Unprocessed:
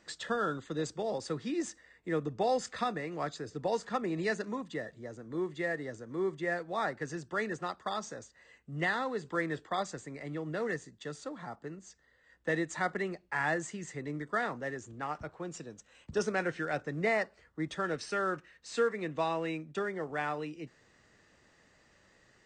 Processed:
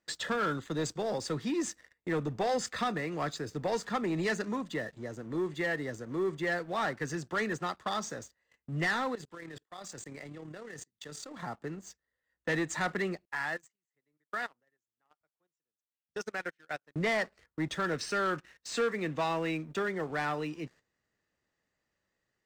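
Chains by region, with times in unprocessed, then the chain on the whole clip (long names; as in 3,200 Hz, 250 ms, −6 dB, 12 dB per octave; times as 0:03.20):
0:09.15–0:11.43: high-shelf EQ 2,900 Hz +7 dB + output level in coarse steps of 24 dB + amplitude modulation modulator 36 Hz, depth 25%
0:13.25–0:16.96: low-shelf EQ 490 Hz −9.5 dB + output level in coarse steps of 9 dB + expander for the loud parts 2.5 to 1, over −51 dBFS
whole clip: noise gate −57 dBFS, range −12 dB; dynamic equaliser 560 Hz, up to −3 dB, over −45 dBFS, Q 0.8; leveller curve on the samples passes 2; level −2.5 dB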